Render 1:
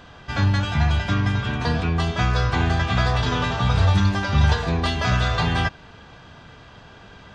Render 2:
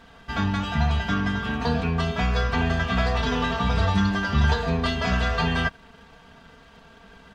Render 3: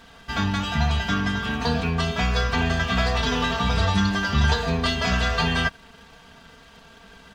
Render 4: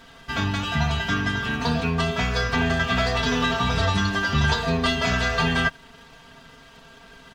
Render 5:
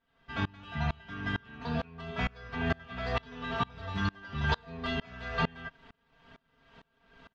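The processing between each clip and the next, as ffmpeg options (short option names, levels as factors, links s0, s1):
-af "aeval=exprs='sgn(val(0))*max(abs(val(0))-0.00266,0)':c=same,bass=f=250:g=1,treble=f=4000:g=-4,aecho=1:1:4.4:0.74,volume=0.708"
-af "highshelf=f=3100:g=8.5"
-af "aecho=1:1:7.5:0.42"
-af "lowpass=3200,aeval=exprs='val(0)*pow(10,-29*if(lt(mod(-2.2*n/s,1),2*abs(-2.2)/1000),1-mod(-2.2*n/s,1)/(2*abs(-2.2)/1000),(mod(-2.2*n/s,1)-2*abs(-2.2)/1000)/(1-2*abs(-2.2)/1000))/20)':c=same,volume=0.668"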